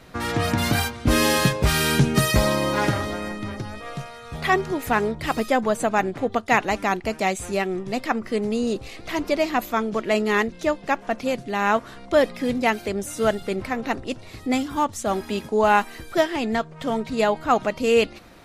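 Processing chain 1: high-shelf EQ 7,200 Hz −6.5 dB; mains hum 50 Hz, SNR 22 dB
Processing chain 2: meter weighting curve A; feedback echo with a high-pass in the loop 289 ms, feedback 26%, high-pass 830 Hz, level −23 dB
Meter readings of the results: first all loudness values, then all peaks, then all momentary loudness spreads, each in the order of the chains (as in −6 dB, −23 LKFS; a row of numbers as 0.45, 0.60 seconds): −23.5, −25.0 LKFS; −5.5, −3.5 dBFS; 9, 10 LU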